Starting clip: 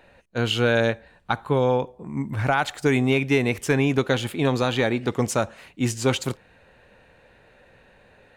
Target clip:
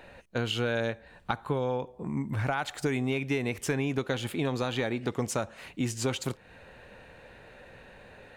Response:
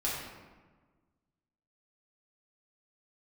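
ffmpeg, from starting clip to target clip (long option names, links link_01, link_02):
-af "acompressor=threshold=-34dB:ratio=3,volume=3.5dB"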